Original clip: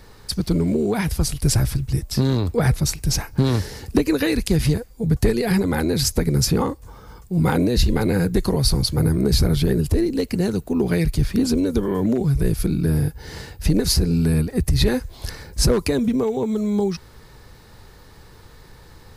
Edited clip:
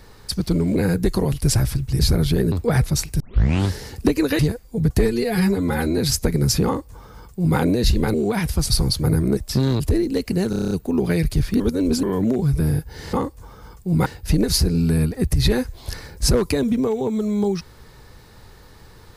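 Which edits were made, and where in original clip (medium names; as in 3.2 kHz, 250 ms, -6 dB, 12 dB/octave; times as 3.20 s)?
0.76–1.32 s: swap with 8.07–8.63 s
1.99–2.42 s: swap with 9.30–9.83 s
3.10 s: tape start 0.52 s
4.29–4.65 s: delete
5.25–5.91 s: stretch 1.5×
6.58–7.51 s: copy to 13.42 s
10.53 s: stutter 0.03 s, 8 plays
11.42–11.85 s: reverse
12.42–12.89 s: delete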